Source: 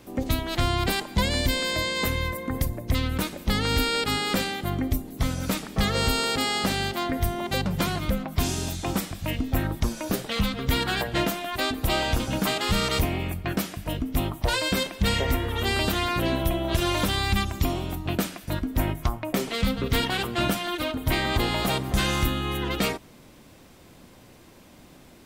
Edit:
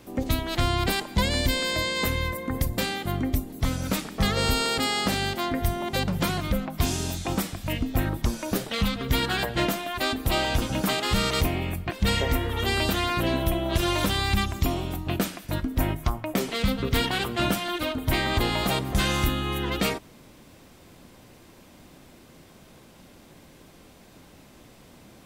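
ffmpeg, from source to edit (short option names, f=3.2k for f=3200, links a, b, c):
-filter_complex "[0:a]asplit=3[a][b][c];[a]atrim=end=2.782[d];[b]atrim=start=4.358:end=13.492[e];[c]atrim=start=14.898[f];[d][e]acrossfade=d=0.004:c1=hsin:c2=hsin[g];[g][f]acrossfade=d=0.004:c1=hsin:c2=hsin"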